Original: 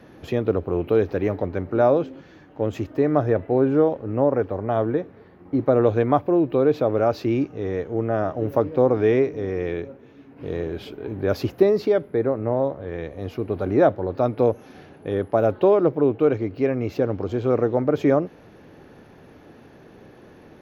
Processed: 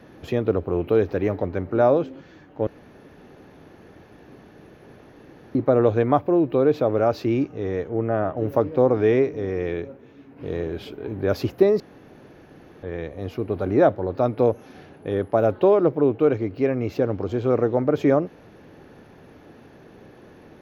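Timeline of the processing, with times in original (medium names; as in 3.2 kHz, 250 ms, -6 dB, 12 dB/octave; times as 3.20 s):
2.67–5.55 s: room tone
7.89–8.37 s: low-pass 3.2 kHz 24 dB/octave
11.80–12.83 s: room tone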